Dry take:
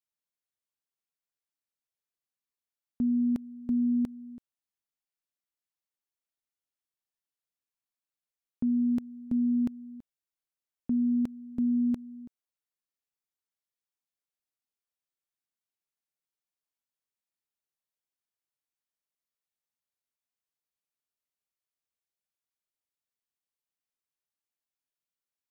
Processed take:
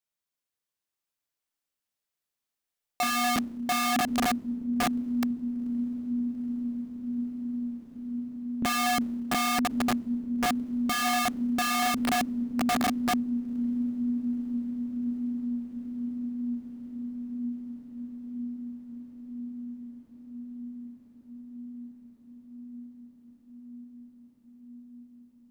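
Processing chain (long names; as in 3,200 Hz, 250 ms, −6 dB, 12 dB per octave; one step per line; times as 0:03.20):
feedback delay with all-pass diffusion 929 ms, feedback 79%, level −4.5 dB
four-comb reverb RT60 1.6 s, combs from 26 ms, DRR 2 dB
wrap-around overflow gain 23.5 dB
level +1.5 dB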